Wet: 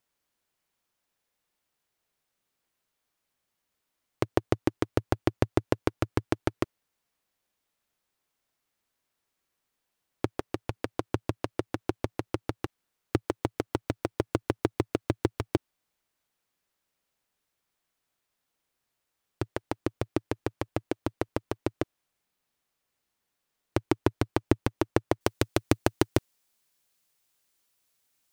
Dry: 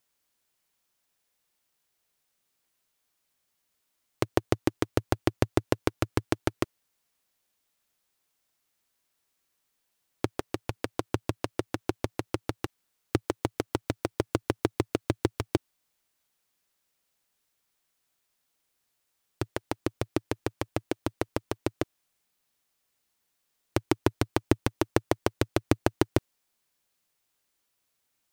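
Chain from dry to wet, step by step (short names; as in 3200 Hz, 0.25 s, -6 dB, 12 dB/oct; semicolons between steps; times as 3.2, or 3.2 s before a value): high shelf 3200 Hz -6.5 dB, from 25.21 s +4 dB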